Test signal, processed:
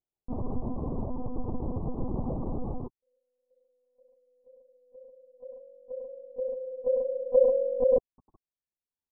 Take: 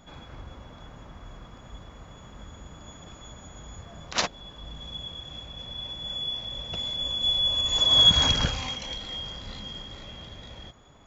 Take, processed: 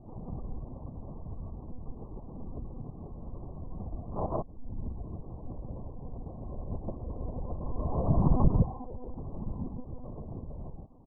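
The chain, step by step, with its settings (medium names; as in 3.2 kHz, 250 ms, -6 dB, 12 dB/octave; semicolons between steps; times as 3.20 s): Chebyshev low-pass 1.1 kHz, order 6; reverb removal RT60 1 s; tilt shelf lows +9.5 dB, about 870 Hz; on a send: loudspeakers at several distances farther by 35 m -7 dB, 52 m 0 dB; on the sum: monotone LPC vocoder at 8 kHz 250 Hz; trim -3.5 dB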